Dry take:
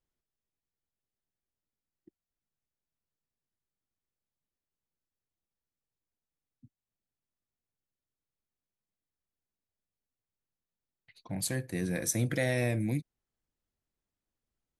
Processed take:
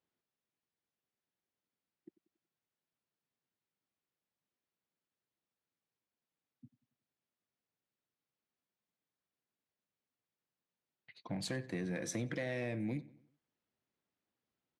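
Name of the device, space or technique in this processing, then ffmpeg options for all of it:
AM radio: -filter_complex "[0:a]highpass=150,lowpass=4100,acompressor=threshold=-37dB:ratio=6,asoftclip=type=tanh:threshold=-29.5dB,asplit=2[link_01][link_02];[link_02]adelay=93,lowpass=frequency=3900:poles=1,volume=-19dB,asplit=2[link_03][link_04];[link_04]adelay=93,lowpass=frequency=3900:poles=1,volume=0.45,asplit=2[link_05][link_06];[link_06]adelay=93,lowpass=frequency=3900:poles=1,volume=0.45,asplit=2[link_07][link_08];[link_08]adelay=93,lowpass=frequency=3900:poles=1,volume=0.45[link_09];[link_01][link_03][link_05][link_07][link_09]amix=inputs=5:normalize=0,volume=2.5dB"

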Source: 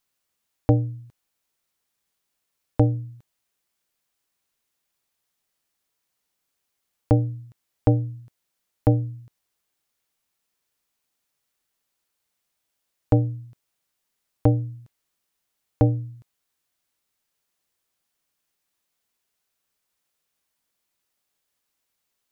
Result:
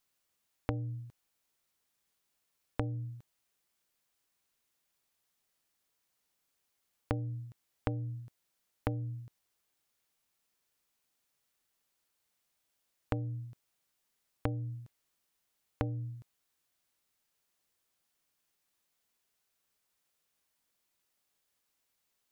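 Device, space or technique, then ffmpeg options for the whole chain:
serial compression, leveller first: -af "acompressor=threshold=-21dB:ratio=2,acompressor=threshold=-29dB:ratio=5,volume=-2dB"

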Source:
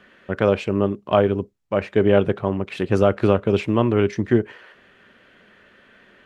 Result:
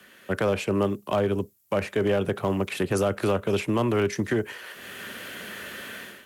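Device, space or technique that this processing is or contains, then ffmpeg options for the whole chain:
FM broadcast chain: -filter_complex "[0:a]highpass=63,dynaudnorm=framelen=140:gausssize=5:maxgain=15dB,acrossover=split=100|220|440|2100[link_01][link_02][link_03][link_04][link_05];[link_01]acompressor=threshold=-35dB:ratio=4[link_06];[link_02]acompressor=threshold=-27dB:ratio=4[link_07];[link_03]acompressor=threshold=-26dB:ratio=4[link_08];[link_04]acompressor=threshold=-18dB:ratio=4[link_09];[link_05]acompressor=threshold=-42dB:ratio=4[link_10];[link_06][link_07][link_08][link_09][link_10]amix=inputs=5:normalize=0,aemphasis=mode=production:type=50fm,alimiter=limit=-12.5dB:level=0:latency=1:release=26,asoftclip=type=hard:threshold=-14dB,lowpass=frequency=15000:width=0.5412,lowpass=frequency=15000:width=1.3066,aemphasis=mode=production:type=50fm,volume=-2dB"

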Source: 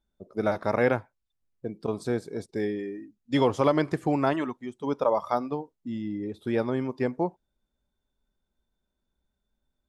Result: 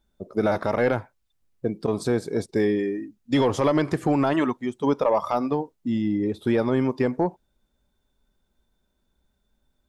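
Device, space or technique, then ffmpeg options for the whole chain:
soft clipper into limiter: -af "asoftclip=type=tanh:threshold=-13.5dB,alimiter=limit=-21dB:level=0:latency=1:release=80,volume=8.5dB"

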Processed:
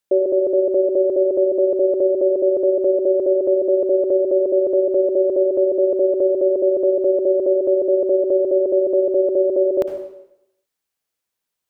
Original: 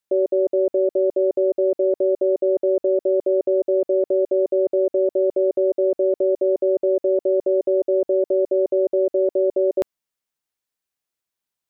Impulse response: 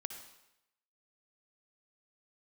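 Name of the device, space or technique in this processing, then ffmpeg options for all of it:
bathroom: -filter_complex "[0:a]equalizer=frequency=480:width_type=o:width=0.45:gain=2.5[link_01];[1:a]atrim=start_sample=2205[link_02];[link_01][link_02]afir=irnorm=-1:irlink=0,volume=5.5dB"

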